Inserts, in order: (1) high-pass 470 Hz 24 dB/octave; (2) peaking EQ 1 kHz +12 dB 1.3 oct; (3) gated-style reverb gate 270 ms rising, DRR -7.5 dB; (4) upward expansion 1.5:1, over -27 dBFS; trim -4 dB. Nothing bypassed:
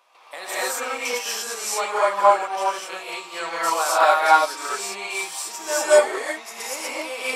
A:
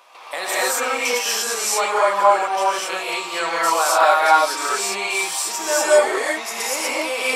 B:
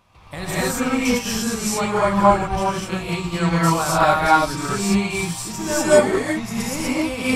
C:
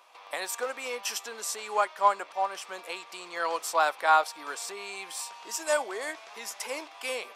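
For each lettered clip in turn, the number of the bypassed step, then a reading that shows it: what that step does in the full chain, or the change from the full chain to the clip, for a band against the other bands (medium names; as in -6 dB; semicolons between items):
4, 500 Hz band -3.0 dB; 1, 250 Hz band +19.0 dB; 3, 500 Hz band -3.0 dB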